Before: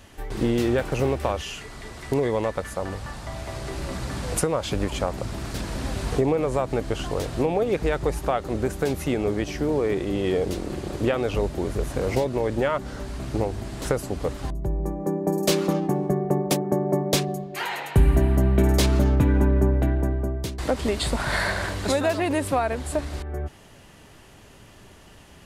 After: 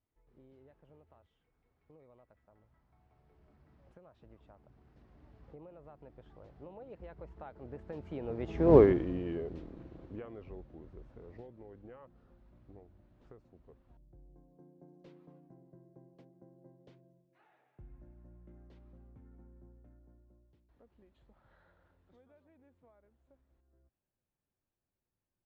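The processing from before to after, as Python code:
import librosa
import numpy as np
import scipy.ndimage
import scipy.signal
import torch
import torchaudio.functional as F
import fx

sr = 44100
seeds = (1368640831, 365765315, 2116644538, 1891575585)

y = fx.doppler_pass(x, sr, speed_mps=36, closest_m=1.9, pass_at_s=8.77)
y = fx.spacing_loss(y, sr, db_at_10k=36)
y = y * librosa.db_to_amplitude(7.5)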